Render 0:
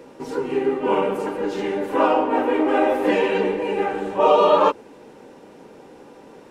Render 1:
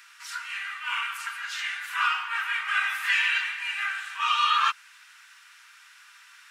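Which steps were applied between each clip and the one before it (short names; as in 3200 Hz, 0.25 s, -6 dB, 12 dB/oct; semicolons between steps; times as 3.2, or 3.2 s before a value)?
steep high-pass 1300 Hz 48 dB/oct; gain +6 dB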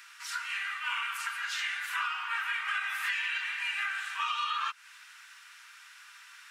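compressor 10:1, threshold -29 dBFS, peak gain reduction 11 dB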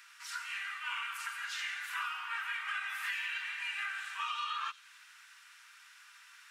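thin delay 89 ms, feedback 58%, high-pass 5100 Hz, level -8 dB; gain -5 dB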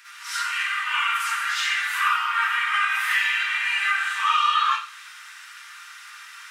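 reverb RT60 0.40 s, pre-delay 46 ms, DRR -9 dB; gain +5.5 dB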